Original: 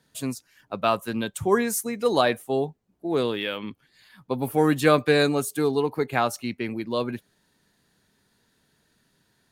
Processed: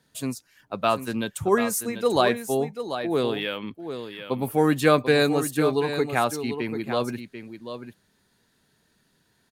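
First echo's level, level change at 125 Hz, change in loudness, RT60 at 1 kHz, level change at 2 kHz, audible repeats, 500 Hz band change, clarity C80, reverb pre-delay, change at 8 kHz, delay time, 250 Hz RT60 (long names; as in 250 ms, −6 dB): −9.5 dB, +0.5 dB, 0.0 dB, no reverb audible, +0.5 dB, 1, +0.5 dB, no reverb audible, no reverb audible, +0.5 dB, 740 ms, no reverb audible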